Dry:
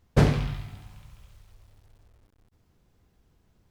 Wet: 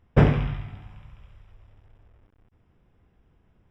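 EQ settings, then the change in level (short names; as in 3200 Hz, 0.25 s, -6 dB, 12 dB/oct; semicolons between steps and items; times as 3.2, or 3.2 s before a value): polynomial smoothing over 25 samples; +2.5 dB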